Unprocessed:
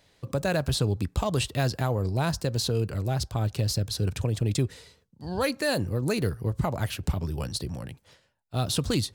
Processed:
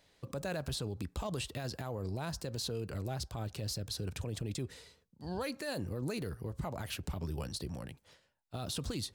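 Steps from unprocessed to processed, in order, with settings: peaking EQ 110 Hz -4.5 dB 0.8 oct; peak limiter -23.5 dBFS, peak gain reduction 10.5 dB; trim -5 dB

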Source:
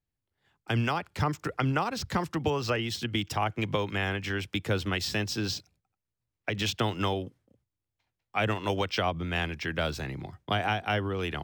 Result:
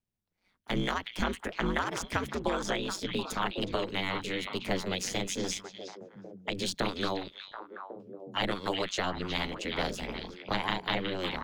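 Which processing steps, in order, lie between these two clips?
formant shift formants +4 st; ring modulator 93 Hz; repeats whose band climbs or falls 366 ms, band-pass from 3 kHz, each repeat -1.4 oct, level -3 dB

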